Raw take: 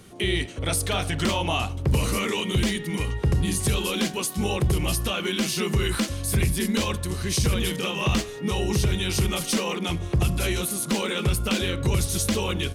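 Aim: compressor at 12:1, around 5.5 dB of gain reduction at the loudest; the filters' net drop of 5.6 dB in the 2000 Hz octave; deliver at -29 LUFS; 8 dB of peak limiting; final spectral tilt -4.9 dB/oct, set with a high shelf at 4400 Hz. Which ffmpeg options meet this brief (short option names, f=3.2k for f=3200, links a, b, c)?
-af "equalizer=f=2k:t=o:g=-6,highshelf=f=4.4k:g=-5.5,acompressor=threshold=-23dB:ratio=12,volume=3.5dB,alimiter=limit=-20dB:level=0:latency=1"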